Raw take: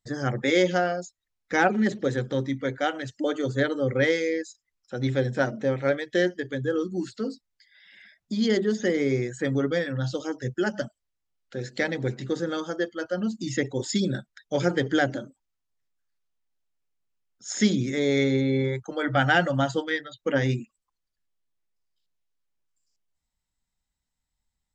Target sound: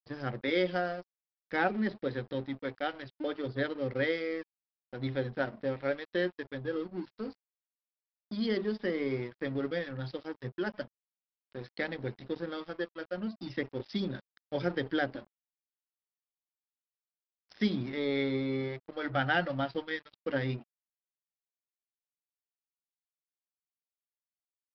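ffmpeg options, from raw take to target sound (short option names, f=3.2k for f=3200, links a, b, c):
-af "adynamicequalizer=threshold=0.00501:dfrequency=140:dqfactor=6.3:tfrequency=140:tqfactor=6.3:attack=5:release=100:ratio=0.375:range=3:mode=cutabove:tftype=bell,aresample=11025,aeval=exprs='sgn(val(0))*max(abs(val(0))-0.01,0)':c=same,aresample=44100,volume=-7dB"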